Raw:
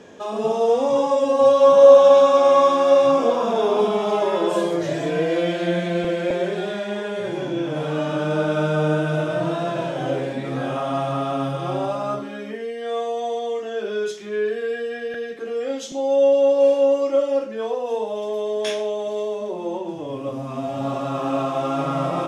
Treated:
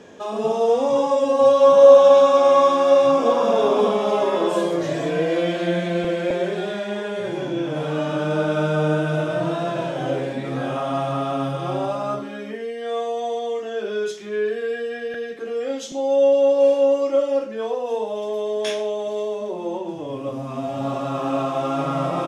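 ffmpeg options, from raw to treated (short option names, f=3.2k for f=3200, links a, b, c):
-filter_complex "[0:a]asplit=2[a][b];[b]afade=t=in:st=2.68:d=0.01,afade=t=out:st=3.36:d=0.01,aecho=0:1:570|1140|1710|2280|2850|3420:0.421697|0.210848|0.105424|0.0527121|0.026356|0.013178[c];[a][c]amix=inputs=2:normalize=0"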